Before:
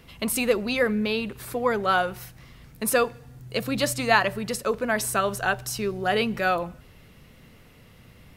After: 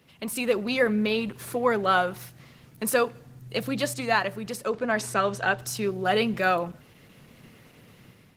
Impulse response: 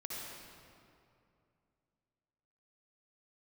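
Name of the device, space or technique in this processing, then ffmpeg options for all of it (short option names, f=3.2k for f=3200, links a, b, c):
video call: -filter_complex "[0:a]asplit=3[a][b][c];[a]afade=t=out:st=4.69:d=0.02[d];[b]lowpass=7.2k,afade=t=in:st=4.69:d=0.02,afade=t=out:st=5.57:d=0.02[e];[c]afade=t=in:st=5.57:d=0.02[f];[d][e][f]amix=inputs=3:normalize=0,highpass=f=100:w=0.5412,highpass=f=100:w=1.3066,dynaudnorm=f=180:g=5:m=9dB,volume=-6.5dB" -ar 48000 -c:a libopus -b:a 16k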